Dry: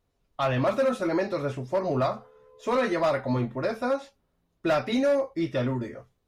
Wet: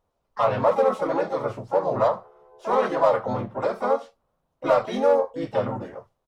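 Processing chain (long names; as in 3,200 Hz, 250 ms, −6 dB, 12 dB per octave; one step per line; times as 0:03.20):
pitch-shifted copies added −3 semitones −1 dB, +7 semitones −9 dB
flat-topped bell 810 Hz +9.5 dB
level −6.5 dB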